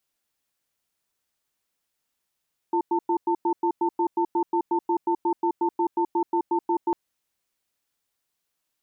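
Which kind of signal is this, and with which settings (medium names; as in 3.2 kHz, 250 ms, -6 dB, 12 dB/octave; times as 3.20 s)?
cadence 343 Hz, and 896 Hz, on 0.08 s, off 0.10 s, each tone -22.5 dBFS 4.20 s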